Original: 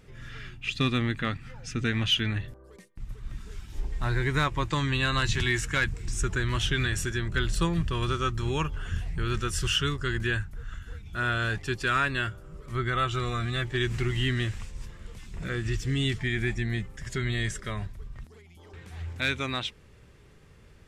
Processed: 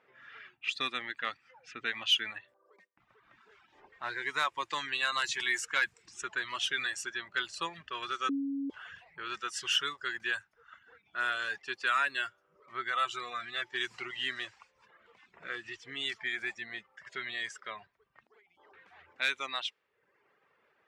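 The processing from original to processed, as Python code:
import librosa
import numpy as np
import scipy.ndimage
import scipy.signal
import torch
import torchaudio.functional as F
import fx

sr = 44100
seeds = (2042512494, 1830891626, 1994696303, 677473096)

y = fx.edit(x, sr, fx.bleep(start_s=8.29, length_s=0.41, hz=277.0, db=-10.5), tone=tone)
y = fx.dereverb_blind(y, sr, rt60_s=0.86)
y = scipy.signal.sosfilt(scipy.signal.butter(2, 700.0, 'highpass', fs=sr, output='sos'), y)
y = fx.env_lowpass(y, sr, base_hz=1800.0, full_db=-25.5)
y = F.gain(torch.from_numpy(y), -1.5).numpy()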